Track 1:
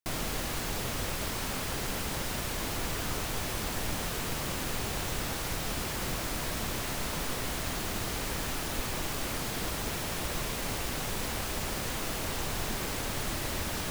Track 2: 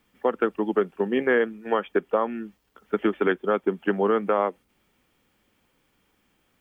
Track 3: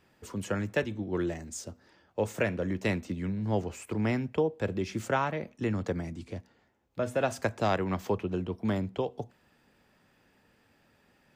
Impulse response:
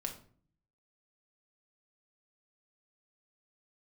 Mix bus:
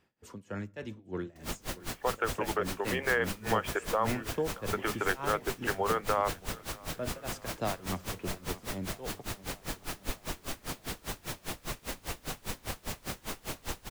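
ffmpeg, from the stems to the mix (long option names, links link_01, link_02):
-filter_complex "[0:a]aeval=exprs='val(0)*pow(10,-33*(0.5-0.5*cos(2*PI*5*n/s))/20)':channel_layout=same,adelay=1300,volume=0.5dB,asplit=2[link_01][link_02];[link_02]volume=-20dB[link_03];[1:a]alimiter=limit=-17.5dB:level=0:latency=1:release=166,highpass=680,adelay=1800,volume=3dB,asplit=2[link_04][link_05];[link_05]volume=-23dB[link_06];[2:a]tremolo=f=3.4:d=0.92,volume=-5.5dB,asplit=3[link_07][link_08][link_09];[link_08]volume=-17.5dB[link_10];[link_09]volume=-15.5dB[link_11];[3:a]atrim=start_sample=2205[link_12];[link_10][link_12]afir=irnorm=-1:irlink=0[link_13];[link_03][link_06][link_11]amix=inputs=3:normalize=0,aecho=0:1:629|1258|1887|2516|3145|3774|4403|5032|5661:1|0.57|0.325|0.185|0.106|0.0602|0.0343|0.0195|0.0111[link_14];[link_01][link_04][link_07][link_13][link_14]amix=inputs=5:normalize=0"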